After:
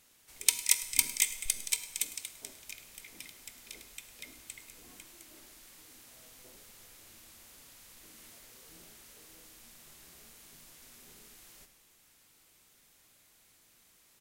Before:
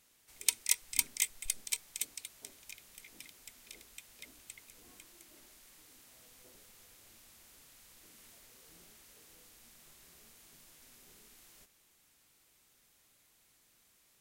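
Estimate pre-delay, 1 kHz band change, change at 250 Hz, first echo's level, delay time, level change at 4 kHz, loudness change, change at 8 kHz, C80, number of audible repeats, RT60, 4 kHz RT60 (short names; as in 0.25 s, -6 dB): 12 ms, +4.5 dB, +4.5 dB, -18.0 dB, 0.104 s, +4.5 dB, +4.5 dB, +4.5 dB, 13.5 dB, 1, 1.0 s, 1.0 s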